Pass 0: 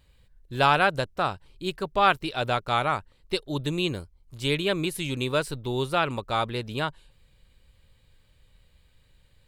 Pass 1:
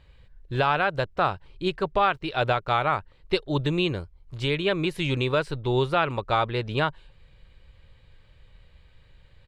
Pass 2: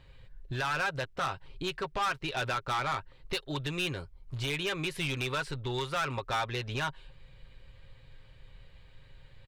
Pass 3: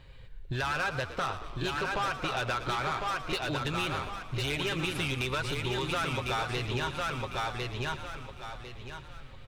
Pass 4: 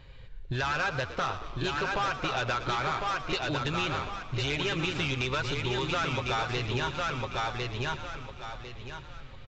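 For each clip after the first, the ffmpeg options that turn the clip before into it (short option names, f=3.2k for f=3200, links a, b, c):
-af "firequalizer=gain_entry='entry(1900,0);entry(8700,-16);entry(13000,-22)':delay=0.05:min_phase=1,alimiter=limit=-18dB:level=0:latency=1:release=403,equalizer=f=240:t=o:w=0.49:g=-6,volume=6.5dB"
-filter_complex "[0:a]aecho=1:1:7.5:0.41,acrossover=split=970[a][b];[a]acompressor=threshold=-32dB:ratio=6[c];[c][b]amix=inputs=2:normalize=0,asoftclip=type=tanh:threshold=-26dB"
-filter_complex "[0:a]asplit=2[a][b];[b]aecho=0:1:1052|2104|3156|4208:0.596|0.173|0.0501|0.0145[c];[a][c]amix=inputs=2:normalize=0,acompressor=threshold=-32dB:ratio=6,asplit=2[d][e];[e]asplit=7[f][g][h][i][j][k][l];[f]adelay=114,afreqshift=-54,volume=-12dB[m];[g]adelay=228,afreqshift=-108,volume=-16.2dB[n];[h]adelay=342,afreqshift=-162,volume=-20.3dB[o];[i]adelay=456,afreqshift=-216,volume=-24.5dB[p];[j]adelay=570,afreqshift=-270,volume=-28.6dB[q];[k]adelay=684,afreqshift=-324,volume=-32.8dB[r];[l]adelay=798,afreqshift=-378,volume=-36.9dB[s];[m][n][o][p][q][r][s]amix=inputs=7:normalize=0[t];[d][t]amix=inputs=2:normalize=0,volume=3.5dB"
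-af "aresample=16000,aresample=44100,volume=1.5dB"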